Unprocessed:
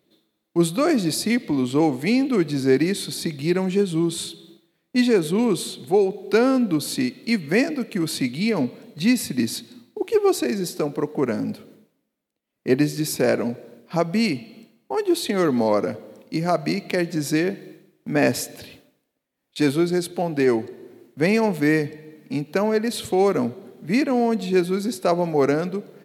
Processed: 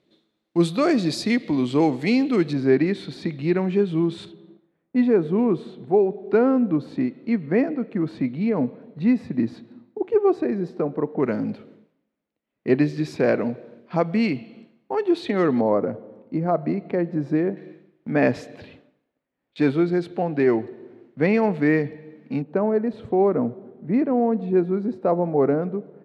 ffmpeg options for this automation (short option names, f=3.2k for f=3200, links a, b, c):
-af "asetnsamples=n=441:p=0,asendcmd='2.53 lowpass f 2400;4.25 lowpass f 1300;11.2 lowpass f 2700;15.61 lowpass f 1100;17.57 lowpass f 2300;22.42 lowpass f 1000',lowpass=5.3k"